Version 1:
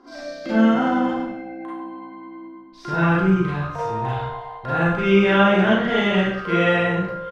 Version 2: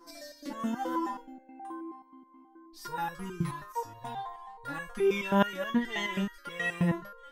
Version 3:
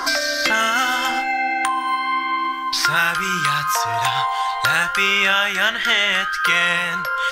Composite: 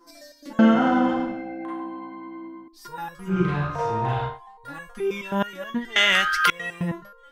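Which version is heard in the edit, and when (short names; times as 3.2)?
2
0.59–2.68 from 1
3.34–4.33 from 1, crossfade 0.16 s
5.96–6.5 from 3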